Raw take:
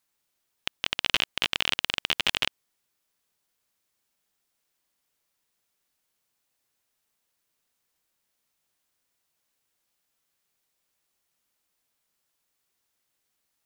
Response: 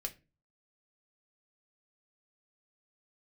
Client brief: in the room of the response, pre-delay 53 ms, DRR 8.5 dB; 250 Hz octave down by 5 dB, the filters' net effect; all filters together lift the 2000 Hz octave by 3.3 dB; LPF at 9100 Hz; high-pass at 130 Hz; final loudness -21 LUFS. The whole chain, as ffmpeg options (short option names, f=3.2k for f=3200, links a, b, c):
-filter_complex "[0:a]highpass=130,lowpass=9.1k,equalizer=f=250:t=o:g=-6.5,equalizer=f=2k:t=o:g=4.5,asplit=2[a][b];[1:a]atrim=start_sample=2205,adelay=53[c];[b][c]afir=irnorm=-1:irlink=0,volume=-7.5dB[d];[a][d]amix=inputs=2:normalize=0,volume=3.5dB"